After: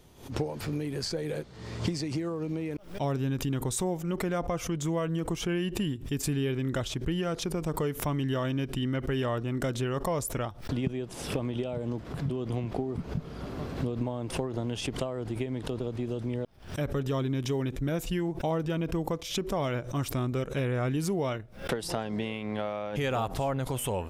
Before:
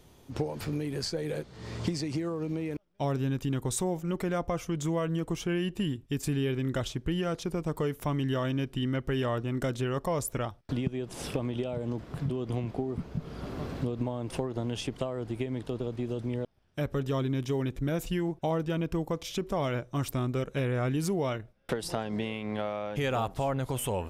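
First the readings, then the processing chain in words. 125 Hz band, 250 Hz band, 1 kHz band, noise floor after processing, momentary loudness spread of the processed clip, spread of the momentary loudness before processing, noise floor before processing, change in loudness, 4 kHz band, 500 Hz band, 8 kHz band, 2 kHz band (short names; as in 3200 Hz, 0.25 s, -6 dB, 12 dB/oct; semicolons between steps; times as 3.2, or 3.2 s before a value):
+0.5 dB, 0.0 dB, +0.5 dB, -44 dBFS, 5 LU, 5 LU, -57 dBFS, +0.5 dB, +1.5 dB, 0.0 dB, +2.0 dB, +1.0 dB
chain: backwards sustainer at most 120 dB/s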